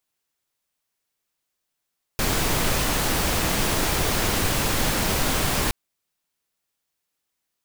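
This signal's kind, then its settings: noise pink, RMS -22.5 dBFS 3.52 s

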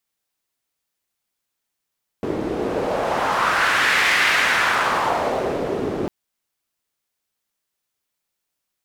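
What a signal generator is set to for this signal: wind-like swept noise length 3.85 s, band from 350 Hz, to 2000 Hz, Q 2, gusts 1, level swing 7 dB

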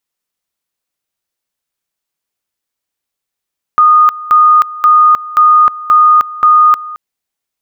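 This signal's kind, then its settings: two-level tone 1230 Hz -3 dBFS, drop 18.5 dB, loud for 0.31 s, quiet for 0.22 s, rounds 6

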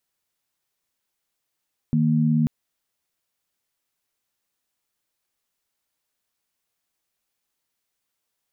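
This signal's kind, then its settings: chord D#3/A#3 sine, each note -19.5 dBFS 0.54 s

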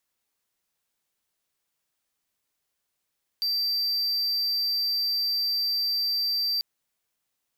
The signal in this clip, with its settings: tone triangle 4680 Hz -21.5 dBFS 3.19 s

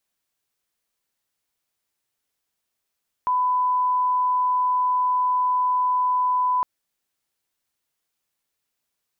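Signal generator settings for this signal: line-up tone -18 dBFS 3.36 s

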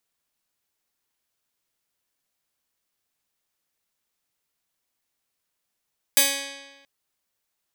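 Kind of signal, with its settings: plucked string C#4, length 0.68 s, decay 1.26 s, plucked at 0.2, bright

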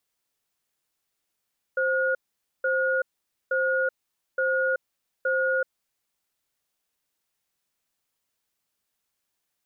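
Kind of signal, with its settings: cadence 525 Hz, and 1440 Hz, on 0.38 s, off 0.49 s, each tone -24 dBFS 4.04 s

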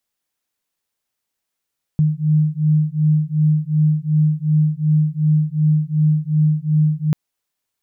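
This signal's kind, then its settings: beating tones 152 Hz, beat 2.7 Hz, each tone -16.5 dBFS 5.14 s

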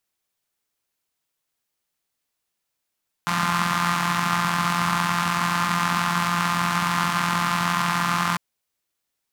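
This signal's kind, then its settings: four-cylinder engine model, steady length 5.10 s, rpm 5200, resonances 180/1100 Hz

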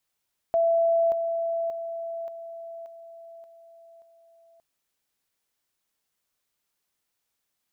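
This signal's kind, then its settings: level ladder 668 Hz -18.5 dBFS, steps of -6 dB, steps 7, 0.58 s 0.00 s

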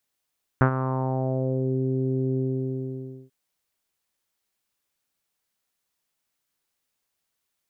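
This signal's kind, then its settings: synth note saw C3 24 dB/oct, low-pass 380 Hz, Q 2.6, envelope 2 oct, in 1.16 s, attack 1.5 ms, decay 0.09 s, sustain -11 dB, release 0.93 s, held 1.76 s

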